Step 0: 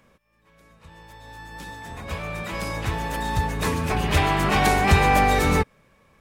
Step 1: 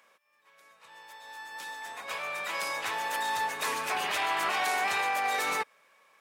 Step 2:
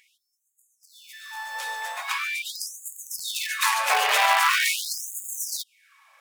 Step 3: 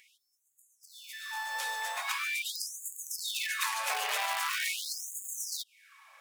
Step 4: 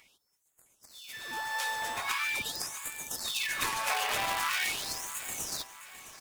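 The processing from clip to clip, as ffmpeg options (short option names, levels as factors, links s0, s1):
-af "highpass=760,alimiter=limit=0.0891:level=0:latency=1:release=24"
-filter_complex "[0:a]asplit=2[s0][s1];[s1]acrusher=bits=5:dc=4:mix=0:aa=0.000001,volume=0.668[s2];[s0][s2]amix=inputs=2:normalize=0,afftfilt=real='re*gte(b*sr/1024,400*pow(6600/400,0.5+0.5*sin(2*PI*0.43*pts/sr)))':imag='im*gte(b*sr/1024,400*pow(6600/400,0.5+0.5*sin(2*PI*0.43*pts/sr)))':win_size=1024:overlap=0.75,volume=2"
-filter_complex "[0:a]acrossover=split=3000|6000[s0][s1][s2];[s0]acompressor=threshold=0.02:ratio=4[s3];[s1]acompressor=threshold=0.00891:ratio=4[s4];[s2]acompressor=threshold=0.0126:ratio=4[s5];[s3][s4][s5]amix=inputs=3:normalize=0"
-filter_complex "[0:a]asplit=2[s0][s1];[s1]acrusher=samples=12:mix=1:aa=0.000001:lfo=1:lforange=19.2:lforate=1.7,volume=0.316[s2];[s0][s2]amix=inputs=2:normalize=0,aecho=1:1:661|1322|1983|2644:0.188|0.0866|0.0399|0.0183"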